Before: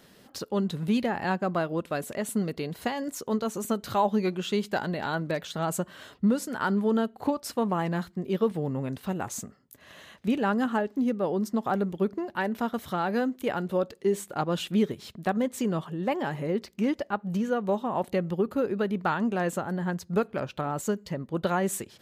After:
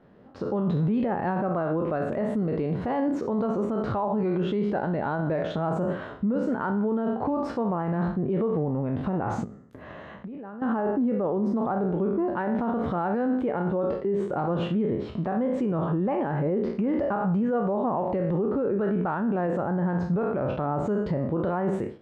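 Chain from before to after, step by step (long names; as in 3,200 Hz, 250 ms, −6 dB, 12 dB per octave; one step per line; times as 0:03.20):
peak hold with a decay on every bin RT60 0.44 s
low-pass filter 1,100 Hz 12 dB per octave
automatic gain control gain up to 15 dB
brickwall limiter −19 dBFS, peak gain reduction 17 dB
0:09.44–0:10.62: downward compressor 4 to 1, threshold −39 dBFS, peak gain reduction 13.5 dB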